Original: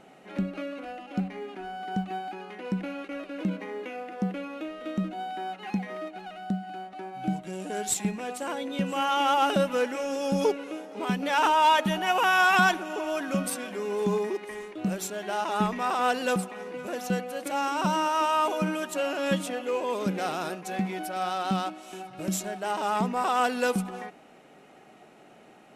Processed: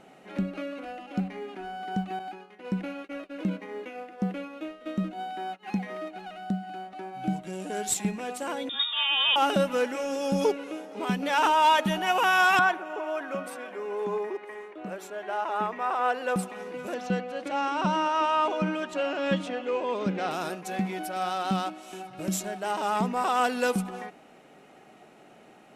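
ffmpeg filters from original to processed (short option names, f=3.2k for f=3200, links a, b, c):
-filter_complex "[0:a]asettb=1/sr,asplit=3[a][b][c];[a]atrim=end=2.194[d];[b]atrim=start=2.19:end=5.68,asetpts=PTS-STARTPTS,afade=t=in:d=0.004:c=qsin,afade=t=out:st=3.486:d=0.004:c=qsin,agate=range=-33dB:threshold=-35dB:ratio=3:release=100:detection=peak[e];[c]atrim=start=5.676[f];[d][e]acrossfade=d=0.004:c1=hsin:c2=qsin[g];[g][f]acrossfade=d=0.004:c1=qsin:c2=hsin,asettb=1/sr,asplit=3[h][i][j];[h]atrim=end=8.694[k];[i]atrim=start=8.69:end=9.36,asetpts=PTS-STARTPTS,afade=t=in:d=0.004:c=qsin,afade=t=out:st=0.666:d=0.004:c=qsin,lowpass=f=3.3k:t=q:w=0.5098,lowpass=f=3.3k:t=q:w=0.6013,lowpass=f=3.3k:t=q:w=0.9,lowpass=f=3.3k:t=q:w=2.563,afreqshift=-3900[l];[j]atrim=start=9.356[m];[k][l]acrossfade=d=0.004:c1=hsin:c2=qsin[n];[n][m]acrossfade=d=0.004:c1=qsin:c2=hsin,asettb=1/sr,asplit=3[o][p][q];[o]atrim=end=12.594[r];[p]atrim=start=12.59:end=16.36,asetpts=PTS-STARTPTS,afade=t=in:d=0.004:c=qsin,afade=t=out:st=3.766:d=0.004:c=qsin,acrossover=split=340 2400:gain=0.158 1 0.2[s][t][u];[s][t][u]amix=inputs=3:normalize=0[v];[q]atrim=start=16.356[w];[r][v]acrossfade=d=0.004:c1=hsin:c2=qsin[x];[x][w]acrossfade=d=0.004:c1=qsin:c2=hsin,asettb=1/sr,asplit=3[y][z][aa];[y]atrim=end=16.944[ab];[z]atrim=start=16.94:end=20.31,asetpts=PTS-STARTPTS,afade=t=in:d=0.004:c=qsin,afade=t=out:st=3.366:d=0.004:c=qsin,lowpass=4.3k[ac];[aa]atrim=start=20.306[ad];[ab][ac]acrossfade=d=0.004:c1=hsin:c2=qsin[ae];[ae][ad]acrossfade=d=0.004:c1=qsin:c2=hsin"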